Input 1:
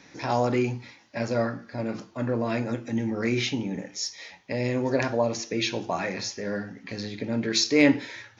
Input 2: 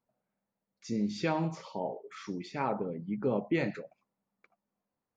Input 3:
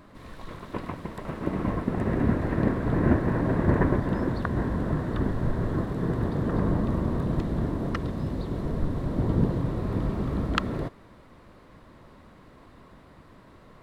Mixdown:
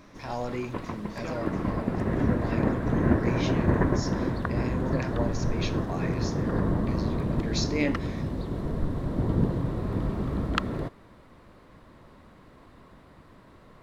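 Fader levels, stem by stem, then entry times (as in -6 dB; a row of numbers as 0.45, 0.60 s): -8.5, -8.5, -1.0 dB; 0.00, 0.00, 0.00 s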